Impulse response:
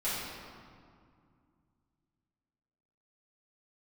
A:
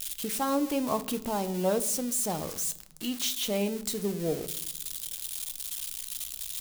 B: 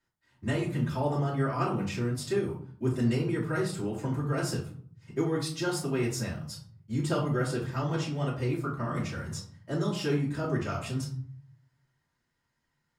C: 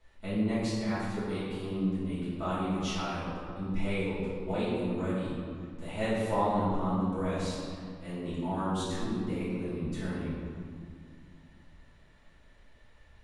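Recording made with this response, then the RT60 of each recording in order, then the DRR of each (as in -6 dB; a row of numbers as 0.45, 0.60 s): C; not exponential, 0.50 s, 2.2 s; 11.5, -7.0, -12.5 dB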